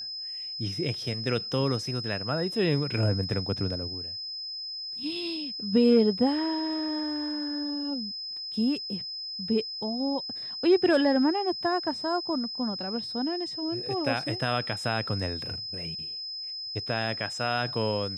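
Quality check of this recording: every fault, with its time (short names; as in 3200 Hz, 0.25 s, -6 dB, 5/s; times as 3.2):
tone 5100 Hz -34 dBFS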